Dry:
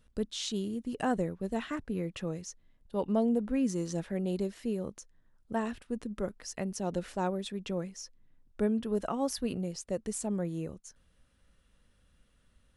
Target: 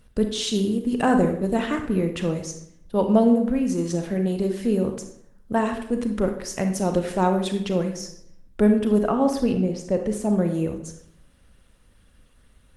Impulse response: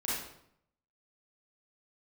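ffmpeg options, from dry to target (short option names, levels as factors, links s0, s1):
-filter_complex "[0:a]asplit=3[s0][s1][s2];[s0]afade=t=out:st=3.33:d=0.02[s3];[s1]acompressor=threshold=0.0282:ratio=16,afade=t=in:st=3.33:d=0.02,afade=t=out:st=4.44:d=0.02[s4];[s2]afade=t=in:st=4.44:d=0.02[s5];[s3][s4][s5]amix=inputs=3:normalize=0,asettb=1/sr,asplit=3[s6][s7][s8];[s6]atrim=end=8.994[s9];[s7]atrim=start=8.99:end=10.33,asetpts=PTS-STARTPTS,afade=t=in:d=0.004:c=qsin,afade=t=out:st=1.336:d=0.004:c=qsin,lowpass=f=2300:p=1[s10];[s8]atrim=start=10.326[s11];[s9][s10]acrossfade=d=0.004:c1=hsin:c2=qsin[s12];[s12][s11]acrossfade=d=0.004:c1=qsin:c2=hsin,asplit=2[s13][s14];[1:a]atrim=start_sample=2205[s15];[s14][s15]afir=irnorm=-1:irlink=0,volume=0.398[s16];[s13][s16]amix=inputs=2:normalize=0,volume=2.66" -ar 48000 -c:a libopus -b:a 24k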